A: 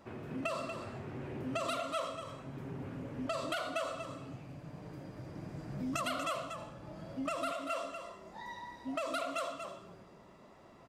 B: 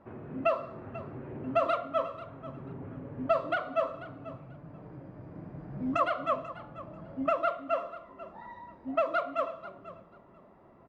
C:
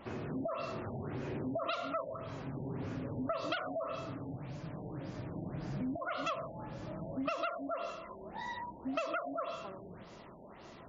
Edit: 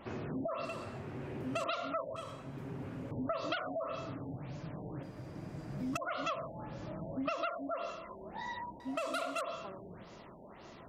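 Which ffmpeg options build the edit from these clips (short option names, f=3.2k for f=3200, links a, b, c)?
-filter_complex "[0:a]asplit=4[a][b][c][d];[2:a]asplit=5[e][f][g][h][i];[e]atrim=end=0.652[j];[a]atrim=start=0.648:end=1.642[k];[f]atrim=start=1.638:end=2.162[l];[b]atrim=start=2.158:end=3.112[m];[g]atrim=start=3.108:end=5.032[n];[c]atrim=start=5.028:end=5.972[o];[h]atrim=start=5.968:end=8.802[p];[d]atrim=start=8.798:end=9.412[q];[i]atrim=start=9.408[r];[j][k]acrossfade=d=0.004:c1=hsin:c2=hsin[s];[s][l]acrossfade=d=0.004:c1=hsin:c2=hsin[t];[t][m]acrossfade=d=0.004:c1=hsin:c2=hsin[u];[u][n]acrossfade=d=0.004:c1=hsin:c2=hsin[v];[v][o]acrossfade=d=0.004:c1=hsin:c2=hsin[w];[w][p]acrossfade=d=0.004:c1=hsin:c2=hsin[x];[x][q]acrossfade=d=0.004:c1=hsin:c2=hsin[y];[y][r]acrossfade=d=0.004:c1=hsin:c2=hsin"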